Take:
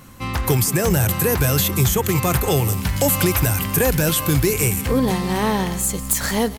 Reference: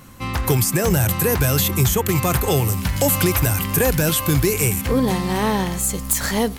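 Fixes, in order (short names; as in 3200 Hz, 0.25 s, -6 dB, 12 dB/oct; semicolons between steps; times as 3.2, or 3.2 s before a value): inverse comb 0.178 s -18 dB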